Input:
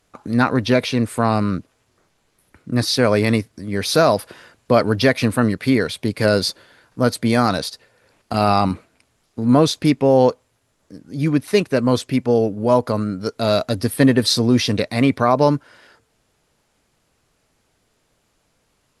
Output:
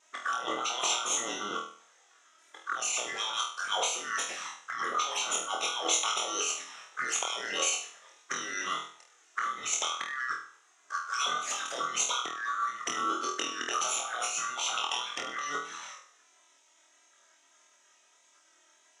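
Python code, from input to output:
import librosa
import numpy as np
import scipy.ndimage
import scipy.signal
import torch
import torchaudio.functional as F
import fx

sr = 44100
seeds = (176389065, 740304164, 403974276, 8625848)

p1 = fx.band_swap(x, sr, width_hz=1000)
p2 = fx.spec_gate(p1, sr, threshold_db=-10, keep='weak')
p3 = fx.over_compress(p2, sr, threshold_db=-35.0, ratio=-1.0)
p4 = fx.leveller(p3, sr, passes=1)
p5 = fx.env_flanger(p4, sr, rest_ms=3.3, full_db=-28.5)
p6 = p5 + fx.room_flutter(p5, sr, wall_m=4.2, rt60_s=0.46, dry=0)
p7 = fx.vibrato(p6, sr, rate_hz=1.6, depth_cents=26.0)
y = fx.cabinet(p7, sr, low_hz=490.0, low_slope=12, high_hz=7800.0, hz=(1200.0, 4500.0, 6600.0), db=(7, -9, 9))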